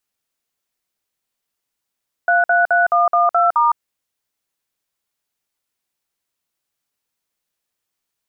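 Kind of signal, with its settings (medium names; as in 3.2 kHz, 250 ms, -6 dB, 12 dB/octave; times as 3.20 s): DTMF "333112*", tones 160 ms, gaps 53 ms, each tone -14 dBFS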